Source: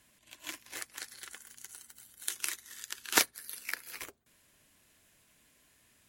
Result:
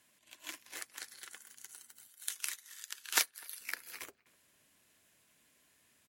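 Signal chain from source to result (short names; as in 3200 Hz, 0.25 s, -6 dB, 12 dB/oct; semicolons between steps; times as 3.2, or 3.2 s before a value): HPF 240 Hz 6 dB/oct, from 2.08 s 1100 Hz, from 3.61 s 140 Hz; speakerphone echo 0.25 s, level -24 dB; gain -3 dB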